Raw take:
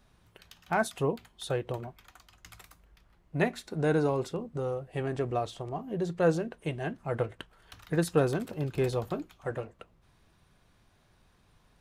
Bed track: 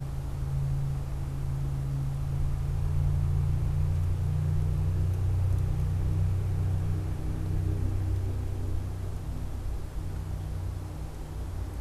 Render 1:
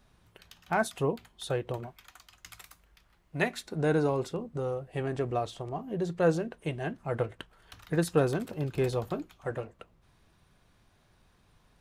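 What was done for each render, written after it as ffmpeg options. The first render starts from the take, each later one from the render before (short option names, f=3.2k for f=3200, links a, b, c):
-filter_complex "[0:a]asettb=1/sr,asplit=3[a][b][c];[a]atrim=end=1.864[d];[b]atrim=start=1.86:end=3.61,asetpts=PTS-STARTPTS,afade=t=in:d=0.004:c=qsin,afade=t=out:st=1.746:d=0.004:c=qsin,tiltshelf=f=970:g=-4[e];[c]atrim=start=3.606[f];[d][e]acrossfade=d=0.004:c1=hsin:c2=qsin[g];[g][f]acrossfade=d=0.004:c1=qsin:c2=hsin"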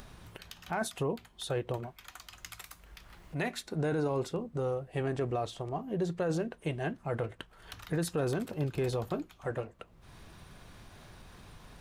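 -af "alimiter=limit=-23.5dB:level=0:latency=1:release=13,acompressor=mode=upward:threshold=-39dB:ratio=2.5"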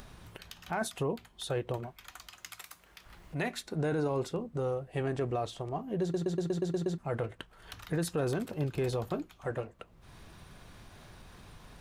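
-filter_complex "[0:a]asettb=1/sr,asplit=3[a][b][c];[a]atrim=end=2.304[d];[b]atrim=start=2.3:end=3.06,asetpts=PTS-STARTPTS,afade=t=in:d=0.004:c=qsin,afade=t=out:st=0.756:d=0.004:c=qsin,highpass=f=250:p=1[e];[c]atrim=start=3.056[f];[d][e]acrossfade=d=0.004:c1=hsin:c2=qsin[g];[g][f]acrossfade=d=0.004:c1=qsin:c2=hsin,asplit=9[h][i][j][k][l][m][n][o][p];[h]atrim=end=6.142[q];[i]atrim=start=6.018:end=6.142[r];[j]atrim=start=6.018:end=6.142[s];[k]atrim=start=6.018:end=6.142[t];[l]atrim=start=6.018:end=6.142[u];[m]atrim=start=6.018:end=6.142[v];[n]atrim=start=6.018:end=6.142[w];[o]atrim=start=6.018:end=6.142[x];[p]atrim=start=6.978[y];[q][r]acrossfade=d=0.004:c1=hsin:c2=hsin[z];[z][s]acrossfade=d=0.004:c1=hsin:c2=hsin[aa];[aa][t]acrossfade=d=0.004:c1=hsin:c2=hsin[ab];[ab][u]acrossfade=d=0.004:c1=hsin:c2=hsin[ac];[ac][v]acrossfade=d=0.004:c1=hsin:c2=hsin[ad];[ad][w]acrossfade=d=0.004:c1=hsin:c2=hsin[ae];[ae][x]acrossfade=d=0.004:c1=hsin:c2=hsin[af];[af][y]acrossfade=d=0.004:c1=hsin:c2=hsin"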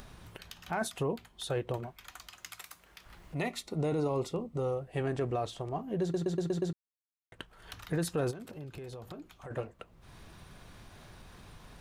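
-filter_complex "[0:a]asettb=1/sr,asplit=3[a][b][c];[a]atrim=end=3.364[d];[b]atrim=start=3.36:end=4.81,asetpts=PTS-STARTPTS,afade=t=in:d=0.004:c=qsin,afade=t=out:st=1.446:d=0.004:c=qsin,asuperstop=centerf=1600:order=4:qfactor=3.9[e];[c]atrim=start=4.806[f];[d][e]acrossfade=d=0.004:c1=hsin:c2=qsin[g];[g][f]acrossfade=d=0.004:c1=qsin:c2=hsin,asplit=3[h][i][j];[h]afade=t=out:st=8.3:d=0.02[k];[i]acompressor=threshold=-42dB:ratio=5:attack=3.2:release=140:knee=1:detection=peak,afade=t=in:st=8.3:d=0.02,afade=t=out:st=9.5:d=0.02[l];[j]afade=t=in:st=9.5:d=0.02[m];[k][l][m]amix=inputs=3:normalize=0,asplit=3[n][o][p];[n]atrim=end=6.73,asetpts=PTS-STARTPTS,afade=t=out:st=6.726:d=0.004:c=hsin[q];[o]atrim=start=6.73:end=7.32,asetpts=PTS-STARTPTS,volume=0[r];[p]atrim=start=7.32,asetpts=PTS-STARTPTS,afade=t=in:d=0.004:c=hsin[s];[q][r][s]concat=n=3:v=0:a=1"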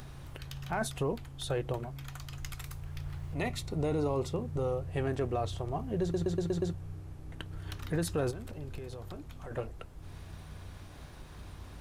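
-filter_complex "[1:a]volume=-13.5dB[a];[0:a][a]amix=inputs=2:normalize=0"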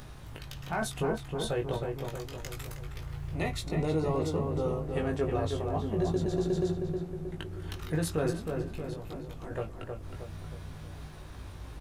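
-filter_complex "[0:a]asplit=2[a][b];[b]adelay=19,volume=-4dB[c];[a][c]amix=inputs=2:normalize=0,asplit=2[d][e];[e]adelay=315,lowpass=f=2k:p=1,volume=-4.5dB,asplit=2[f][g];[g]adelay=315,lowpass=f=2k:p=1,volume=0.52,asplit=2[h][i];[i]adelay=315,lowpass=f=2k:p=1,volume=0.52,asplit=2[j][k];[k]adelay=315,lowpass=f=2k:p=1,volume=0.52,asplit=2[l][m];[m]adelay=315,lowpass=f=2k:p=1,volume=0.52,asplit=2[n][o];[o]adelay=315,lowpass=f=2k:p=1,volume=0.52,asplit=2[p][q];[q]adelay=315,lowpass=f=2k:p=1,volume=0.52[r];[d][f][h][j][l][n][p][r]amix=inputs=8:normalize=0"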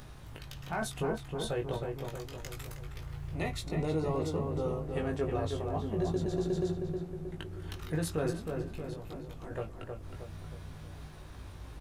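-af "volume=-2.5dB"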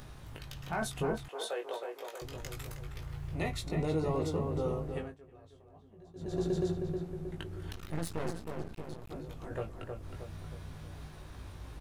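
-filter_complex "[0:a]asettb=1/sr,asplit=3[a][b][c];[a]atrim=end=1.284[d];[b]atrim=start=1.28:end=2.22,asetpts=PTS-STARTPTS,afade=t=in:d=0.004:c=qsin,afade=t=out:st=0.936:d=0.004:c=qsin,highpass=f=440:w=0.5412,highpass=f=440:w=1.3066[e];[c]atrim=start=2.216[f];[d][e]acrossfade=d=0.004:c1=hsin:c2=qsin[g];[g][f]acrossfade=d=0.004:c1=qsin:c2=hsin,asettb=1/sr,asplit=3[h][i][j];[h]atrim=end=7.724[k];[i]atrim=start=7.72:end=9.11,asetpts=PTS-STARTPTS,afade=t=in:d=0.004:c=qsin,afade=t=out:st=1.386:d=0.004:c=qsin,aeval=exprs='max(val(0),0)':c=same[l];[j]atrim=start=9.106[m];[k][l]acrossfade=d=0.004:c1=hsin:c2=qsin[n];[n][m]acrossfade=d=0.004:c1=qsin:c2=hsin,asplit=3[o][p][q];[o]atrim=end=5.15,asetpts=PTS-STARTPTS,afade=t=out:st=4.87:d=0.28:silence=0.0668344[r];[p]atrim=start=5.15:end=6.14,asetpts=PTS-STARTPTS,volume=-23.5dB[s];[q]atrim=start=6.14,asetpts=PTS-STARTPTS,afade=t=in:d=0.28:silence=0.0668344[t];[r][s][t]concat=n=3:v=0:a=1"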